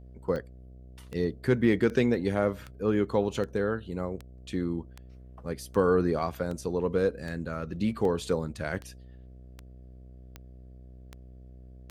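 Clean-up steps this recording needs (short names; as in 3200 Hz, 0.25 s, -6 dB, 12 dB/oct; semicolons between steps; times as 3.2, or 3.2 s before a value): de-click; de-hum 62.9 Hz, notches 11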